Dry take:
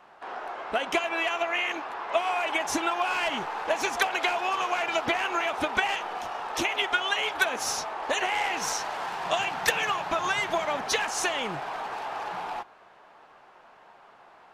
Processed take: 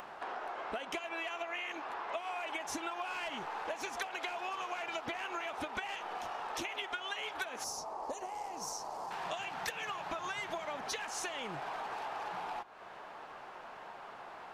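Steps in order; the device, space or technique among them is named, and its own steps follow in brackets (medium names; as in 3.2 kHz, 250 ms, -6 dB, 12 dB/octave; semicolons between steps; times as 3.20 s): upward and downward compression (upward compressor, threshold -49 dBFS; compression 4:1, threshold -44 dBFS, peak gain reduction 21 dB); 7.64–9.11 s: high-order bell 2.3 kHz -15 dB; trim +4 dB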